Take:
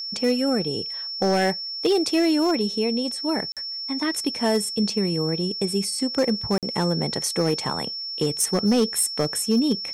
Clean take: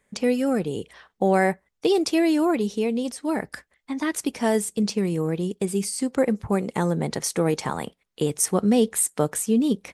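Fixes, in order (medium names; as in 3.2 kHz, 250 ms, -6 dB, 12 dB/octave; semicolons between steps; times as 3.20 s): clip repair -14 dBFS; band-stop 5.4 kHz, Q 30; interpolate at 3.52/6.58 s, 47 ms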